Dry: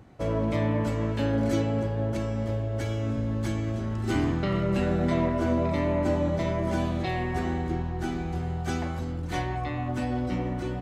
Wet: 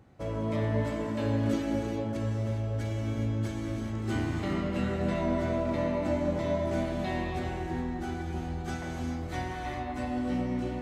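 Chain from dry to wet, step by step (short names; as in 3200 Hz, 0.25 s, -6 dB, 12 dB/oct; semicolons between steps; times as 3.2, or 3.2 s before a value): non-linear reverb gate 0.45 s flat, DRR -0.5 dB; gain -6.5 dB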